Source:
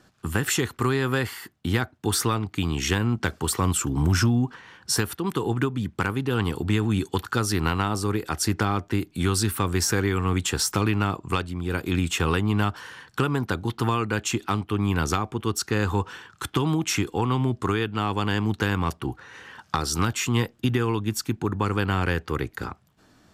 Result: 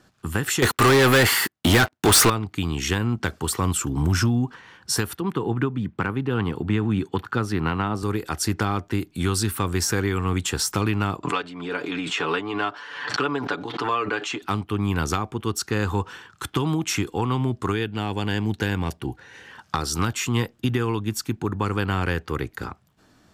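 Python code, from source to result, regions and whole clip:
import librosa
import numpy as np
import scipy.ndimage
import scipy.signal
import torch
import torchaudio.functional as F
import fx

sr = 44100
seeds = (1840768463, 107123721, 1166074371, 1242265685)

y = fx.chain(x, sr, fx.low_shelf(hz=230.0, db=-9.5),
    fx.leveller(passes=5), at=(0.62, 2.3))
y = fx.chain(y, sr, fx.highpass(hz=110.0, slope=12),
    fx.bass_treble(bass_db=3, treble_db=-14), at=(5.21, 8.03))
y = fx.chain(y, sr, fx.bandpass_edges(low_hz=350.0, high_hz=4100.0),
    fx.comb(ms=6.9, depth=0.68),
    fx.pre_swell(db_per_s=53.0), at=(11.23, 14.42))
y = fx.chain(y, sr, fx.peak_eq(hz=1100.0, db=-8.0, octaves=0.35),
    fx.notch(hz=1300.0, q=10.0), at=(17.72, 19.51))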